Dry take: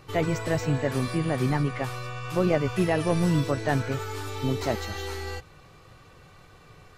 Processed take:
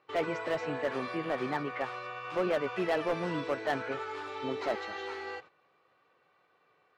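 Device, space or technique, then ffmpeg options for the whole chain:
walkie-talkie: -af "highpass=410,lowpass=2.7k,asoftclip=type=hard:threshold=-23dB,agate=range=-12dB:threshold=-49dB:ratio=16:detection=peak,volume=-1dB"

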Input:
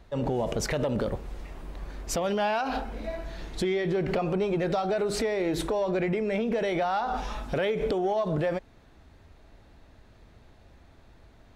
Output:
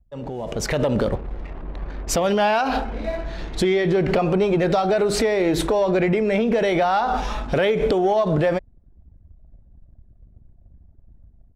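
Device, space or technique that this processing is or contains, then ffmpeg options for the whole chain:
voice memo with heavy noise removal: -af "anlmdn=0.0158,dynaudnorm=f=410:g=3:m=13dB,volume=-5dB"

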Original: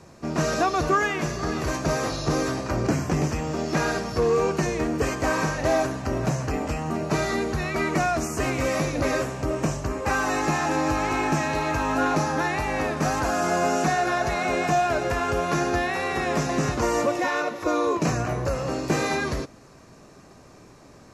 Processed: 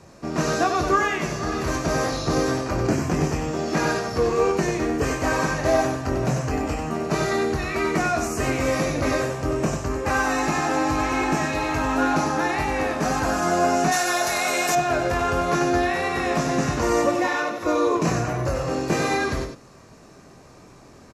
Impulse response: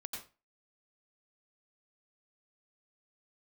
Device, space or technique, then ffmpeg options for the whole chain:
slapback doubling: -filter_complex "[0:a]asplit=3[a][b][c];[b]adelay=23,volume=-7dB[d];[c]adelay=94,volume=-6dB[e];[a][d][e]amix=inputs=3:normalize=0,asplit=3[f][g][h];[f]afade=t=out:st=13.91:d=0.02[i];[g]aemphasis=mode=production:type=riaa,afade=t=in:st=13.91:d=0.02,afade=t=out:st=14.74:d=0.02[j];[h]afade=t=in:st=14.74:d=0.02[k];[i][j][k]amix=inputs=3:normalize=0"

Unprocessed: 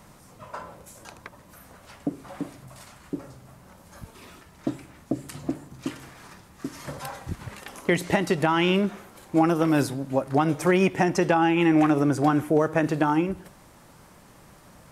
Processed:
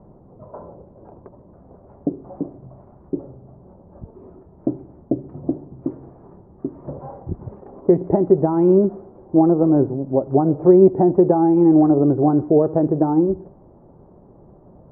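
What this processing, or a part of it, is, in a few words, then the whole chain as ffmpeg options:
under water: -af "lowpass=f=760:w=0.5412,lowpass=f=760:w=1.3066,equalizer=f=380:t=o:w=0.27:g=8,volume=5dB"

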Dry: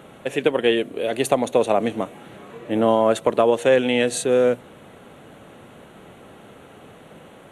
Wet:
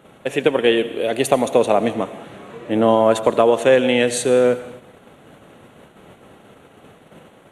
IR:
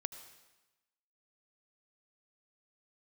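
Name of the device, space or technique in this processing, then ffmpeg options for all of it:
keyed gated reverb: -filter_complex "[0:a]asplit=3[a][b][c];[1:a]atrim=start_sample=2205[d];[b][d]afir=irnorm=-1:irlink=0[e];[c]apad=whole_len=331288[f];[e][f]sidechaingate=range=-33dB:threshold=-43dB:ratio=16:detection=peak,volume=8dB[g];[a][g]amix=inputs=2:normalize=0,asettb=1/sr,asplit=3[h][i][j];[h]atrim=end=1.934[k];[i]atrim=start=1.93:end=2.97,asetpts=PTS-STARTPTS,afade=t=in:d=0.004:c=qsin,afade=t=out:st=1.036:d=0.004:c=qsin,lowpass=11k[l];[j]atrim=start=2.966[m];[k][l]acrossfade=d=0.004:c1=hsin:c2=qsin[n];[n][m]acrossfade=d=0.004:c1=qsin:c2=hsin,volume=-7dB"

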